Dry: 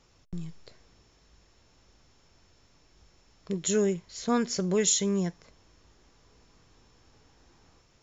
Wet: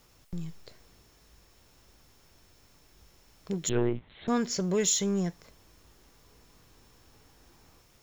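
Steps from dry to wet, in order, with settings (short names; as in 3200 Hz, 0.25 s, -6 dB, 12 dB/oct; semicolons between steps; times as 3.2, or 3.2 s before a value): added noise white -69 dBFS; in parallel at -5 dB: hard clip -32 dBFS, distortion -5 dB; 3.69–4.28 on the sum: monotone LPC vocoder at 8 kHz 120 Hz; gain -3 dB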